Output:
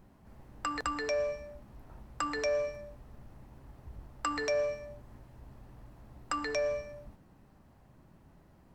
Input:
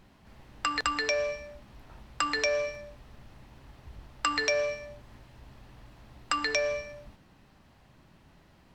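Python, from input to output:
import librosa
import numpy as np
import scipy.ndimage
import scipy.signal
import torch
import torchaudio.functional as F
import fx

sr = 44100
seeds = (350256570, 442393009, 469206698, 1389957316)

y = fx.peak_eq(x, sr, hz=3400.0, db=-12.5, octaves=2.2)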